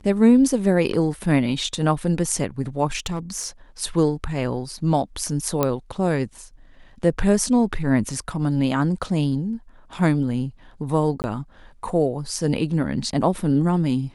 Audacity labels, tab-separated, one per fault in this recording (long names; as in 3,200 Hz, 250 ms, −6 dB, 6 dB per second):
2.970000	3.470000	clipping −21 dBFS
5.630000	5.630000	click −6 dBFS
11.220000	11.240000	drop-out 19 ms